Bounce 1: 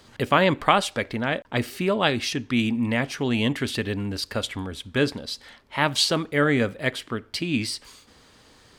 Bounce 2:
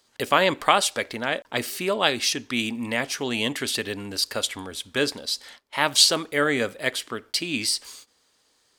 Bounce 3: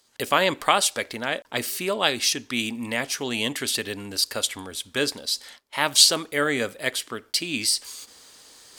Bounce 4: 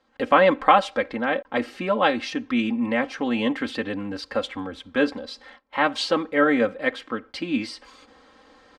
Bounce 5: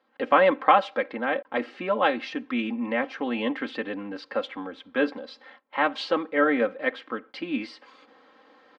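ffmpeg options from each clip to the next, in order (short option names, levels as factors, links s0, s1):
-af "bass=f=250:g=-11,treble=f=4000:g=9,agate=range=0.2:threshold=0.00501:ratio=16:detection=peak"
-af "areverse,acompressor=mode=upward:threshold=0.0141:ratio=2.5,areverse,equalizer=f=15000:t=o:w=1.8:g=6,volume=0.841"
-af "lowpass=1600,aecho=1:1:3.8:0.77,volume=1.5"
-af "highpass=240,lowpass=3400,volume=0.794"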